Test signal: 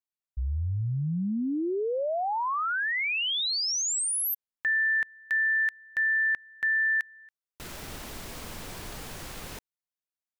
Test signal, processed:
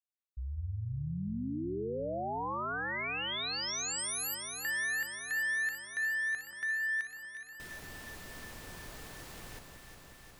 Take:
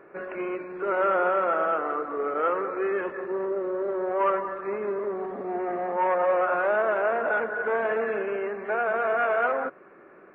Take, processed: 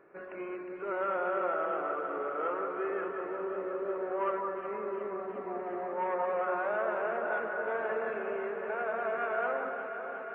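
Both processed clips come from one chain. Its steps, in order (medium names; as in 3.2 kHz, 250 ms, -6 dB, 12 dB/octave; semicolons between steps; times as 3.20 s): echo whose repeats swap between lows and highs 180 ms, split 1.4 kHz, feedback 88%, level -6.5 dB; trim -9 dB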